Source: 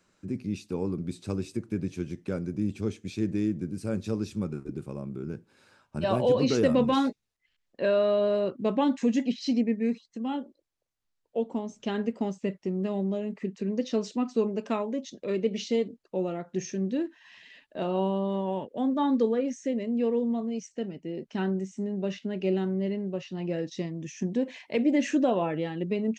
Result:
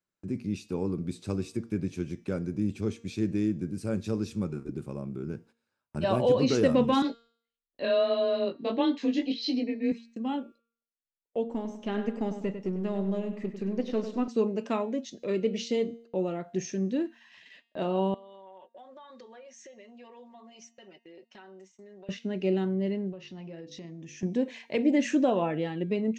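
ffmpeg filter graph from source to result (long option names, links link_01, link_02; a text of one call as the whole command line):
ffmpeg -i in.wav -filter_complex "[0:a]asettb=1/sr,asplit=3[link_01][link_02][link_03];[link_01]atrim=end=7.024[link_04];[link_02]atrim=start=7.02:end=9.92,asetpts=PTS-STARTPTS,afade=type=in:duration=0.004:curve=qsin,afade=type=out:start_time=2.896:duration=0.004:curve=qsin,flanger=delay=17.5:depth=4.1:speed=1.6,afreqshift=22,lowpass=frequency=4100:width_type=q:width=2.9[link_05];[link_03]atrim=start=9.916[link_06];[link_04][link_05]acrossfade=duration=0.004:curve1=hsin:curve2=qsin[link_07];[link_07][link_06]acrossfade=duration=0.004:curve1=qsin:curve2=hsin,asettb=1/sr,asplit=3[link_08][link_09][link_10];[link_08]atrim=end=11.484[link_11];[link_09]atrim=start=11.48:end=14.28,asetpts=PTS-STARTPTS,afade=type=in:duration=0.004:curve=qsin,afade=type=out:start_time=2.796:duration=0.004:curve=qsin,aeval=exprs='if(lt(val(0),0),0.708*val(0),val(0))':channel_layout=same,acrossover=split=3400[link_12][link_13];[link_13]acompressor=threshold=-58dB:ratio=4:attack=1:release=60[link_14];[link_12][link_14]amix=inputs=2:normalize=0,asplit=2[link_15][link_16];[link_16]adelay=99,lowpass=frequency=4500:poles=1,volume=-9dB,asplit=2[link_17][link_18];[link_18]adelay=99,lowpass=frequency=4500:poles=1,volume=0.41,asplit=2[link_19][link_20];[link_20]adelay=99,lowpass=frequency=4500:poles=1,volume=0.41,asplit=2[link_21][link_22];[link_22]adelay=99,lowpass=frequency=4500:poles=1,volume=0.41,asplit=2[link_23][link_24];[link_24]adelay=99,lowpass=frequency=4500:poles=1,volume=0.41[link_25];[link_15][link_17][link_19][link_21][link_23][link_25]amix=inputs=6:normalize=0,atrim=end_sample=123480[link_26];[link_10]atrim=start=14.276[link_27];[link_11][link_26]acrossfade=duration=0.004:curve1=hsin:curve2=qsin[link_28];[link_28][link_27]acrossfade=duration=0.004:curve1=qsin:curve2=hsin,asettb=1/sr,asplit=3[link_29][link_30][link_31];[link_29]atrim=end=18.144[link_32];[link_30]atrim=start=18.14:end=22.09,asetpts=PTS-STARTPTS,afade=type=in:duration=0.004:curve=qsin,afade=type=out:start_time=3.946:duration=0.004:curve=qsin,highpass=670,lowpass=6100,aecho=1:1:5.4:0.89,atrim=end_sample=174195,acompressor=threshold=-46dB:ratio=10:attack=3.2:release=140:knee=1:detection=peak[link_33];[link_31]atrim=start=22.086[link_34];[link_32][link_33]acrossfade=duration=0.004:curve1=hsin:curve2=qsin[link_35];[link_35][link_34]acrossfade=duration=0.004:curve1=qsin:curve2=hsin,asettb=1/sr,asplit=3[link_36][link_37][link_38];[link_36]atrim=end=23.124[link_39];[link_37]atrim=start=23.12:end=24.23,asetpts=PTS-STARTPTS,afade=type=in:duration=0.004:curve=qsin,afade=type=out:start_time=1.106:duration=0.004:curve=qsin,lowpass=6200,bandreject=frequency=50:width_type=h:width=6,bandreject=frequency=100:width_type=h:width=6,bandreject=frequency=150:width_type=h:width=6,bandreject=frequency=200:width_type=h:width=6,bandreject=frequency=250:width_type=h:width=6,bandreject=frequency=300:width_type=h:width=6,bandreject=frequency=350:width_type=h:width=6,bandreject=frequency=400:width_type=h:width=6,bandreject=frequency=450:width_type=h:width=6,bandreject=frequency=500:width_type=h:width=6,acompressor=threshold=-40dB:ratio=5:attack=3.2:release=140:knee=1:detection=peak[link_40];[link_38]atrim=start=24.226[link_41];[link_39][link_40]acrossfade=duration=0.004:curve1=hsin:curve2=qsin[link_42];[link_42][link_41]acrossfade=duration=0.004:curve1=qsin:curve2=hsin,agate=range=-23dB:threshold=-52dB:ratio=16:detection=peak,bandreject=frequency=231.8:width_type=h:width=4,bandreject=frequency=463.6:width_type=h:width=4,bandreject=frequency=695.4:width_type=h:width=4,bandreject=frequency=927.2:width_type=h:width=4,bandreject=frequency=1159:width_type=h:width=4,bandreject=frequency=1390.8:width_type=h:width=4,bandreject=frequency=1622.6:width_type=h:width=4,bandreject=frequency=1854.4:width_type=h:width=4,bandreject=frequency=2086.2:width_type=h:width=4,bandreject=frequency=2318:width_type=h:width=4,bandreject=frequency=2549.8:width_type=h:width=4,bandreject=frequency=2781.6:width_type=h:width=4,bandreject=frequency=3013.4:width_type=h:width=4,bandreject=frequency=3245.2:width_type=h:width=4,bandreject=frequency=3477:width_type=h:width=4,bandreject=frequency=3708.8:width_type=h:width=4,bandreject=frequency=3940.6:width_type=h:width=4,bandreject=frequency=4172.4:width_type=h:width=4,bandreject=frequency=4404.2:width_type=h:width=4,bandreject=frequency=4636:width_type=h:width=4,bandreject=frequency=4867.8:width_type=h:width=4,bandreject=frequency=5099.6:width_type=h:width=4,bandreject=frequency=5331.4:width_type=h:width=4,bandreject=frequency=5563.2:width_type=h:width=4,bandreject=frequency=5795:width_type=h:width=4,bandreject=frequency=6026.8:width_type=h:width=4,bandreject=frequency=6258.6:width_type=h:width=4,bandreject=frequency=6490.4:width_type=h:width=4,bandreject=frequency=6722.2:width_type=h:width=4,bandreject=frequency=6954:width_type=h:width=4,bandreject=frequency=7185.8:width_type=h:width=4,bandreject=frequency=7417.6:width_type=h:width=4,bandreject=frequency=7649.4:width_type=h:width=4,bandreject=frequency=7881.2:width_type=h:width=4" out.wav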